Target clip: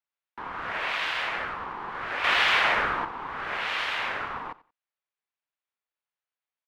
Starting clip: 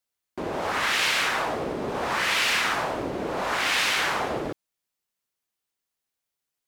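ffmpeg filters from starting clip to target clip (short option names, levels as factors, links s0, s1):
-filter_complex "[0:a]aeval=exprs='val(0)*sin(2*PI*610*n/s)':c=same,asettb=1/sr,asplit=3[s0][s1][s2];[s0]atrim=end=2.244[s3];[s1]atrim=start=2.24:end=3.05,asetpts=PTS-STARTPTS,afade=t=in:d=0.004:c=qsin,afade=t=out:st=0.806:d=0.004:c=qsin,acontrast=86[s4];[s2]atrim=start=3.046[s5];[s3][s4]acrossfade=d=0.004:c1=hsin:c2=qsin[s6];[s6][s5]acrossfade=d=0.004:c1=qsin:c2=hsin,acrossover=split=530 3400:gain=0.2 1 0.0891[s7][s8][s9];[s7][s8][s9]amix=inputs=3:normalize=0,asplit=2[s10][s11];[s11]aecho=0:1:90|180:0.1|0.021[s12];[s10][s12]amix=inputs=2:normalize=0"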